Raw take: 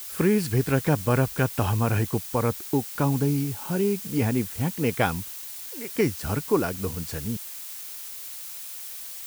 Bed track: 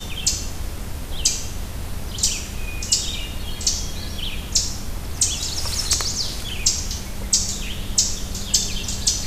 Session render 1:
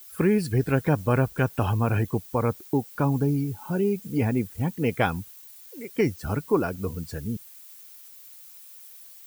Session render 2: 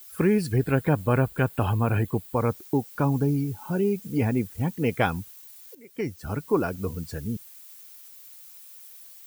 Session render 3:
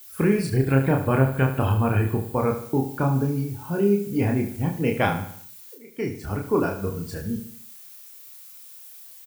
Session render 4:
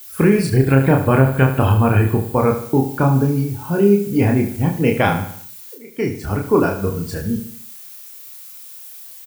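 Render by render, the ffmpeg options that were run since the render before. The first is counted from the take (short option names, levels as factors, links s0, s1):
-af "afftdn=nr=13:nf=-38"
-filter_complex "[0:a]asettb=1/sr,asplit=3[s0][s1][s2];[s0]atrim=end=0.564[s3];[s1]atrim=start=0.56:end=2.36,asetpts=PTS-STARTPTS,afade=t=in:d=0.004:c=qsin,afade=t=out:st=1.796:d=0.004:c=qsin,equalizer=f=5800:w=5:g=-11.5[s4];[s2]atrim=start=2.356[s5];[s3][s4]acrossfade=d=0.004:c1=hsin:c2=qsin[s6];[s6][s5]acrossfade=d=0.004:c1=qsin:c2=hsin,asplit=2[s7][s8];[s7]atrim=end=5.75,asetpts=PTS-STARTPTS,afade=t=out:st=5.746:d=0.004:c=hsin:silence=0.199526[s9];[s8]atrim=start=5.75,asetpts=PTS-STARTPTS,afade=t=in:d=0.88:silence=0.199526[s10];[s9][s10]concat=n=2:v=0:a=1"
-filter_complex "[0:a]asplit=2[s0][s1];[s1]adelay=30,volume=0.708[s2];[s0][s2]amix=inputs=2:normalize=0,aecho=1:1:74|148|222|296|370:0.299|0.134|0.0605|0.0272|0.0122"
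-af "volume=2.24,alimiter=limit=0.708:level=0:latency=1"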